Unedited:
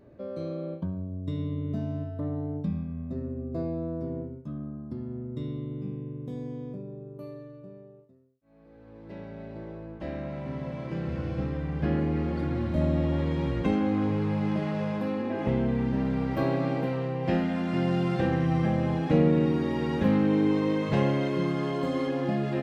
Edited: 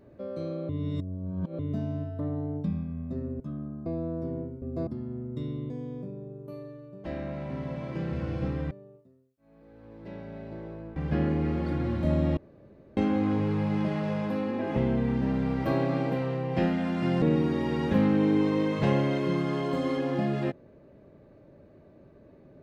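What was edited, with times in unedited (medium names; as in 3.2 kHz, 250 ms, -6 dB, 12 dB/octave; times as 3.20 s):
0.69–1.59 s: reverse
3.40–3.65 s: swap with 4.41–4.87 s
5.70–6.41 s: delete
10.00–11.67 s: move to 7.75 s
13.08–13.68 s: room tone
17.93–19.32 s: delete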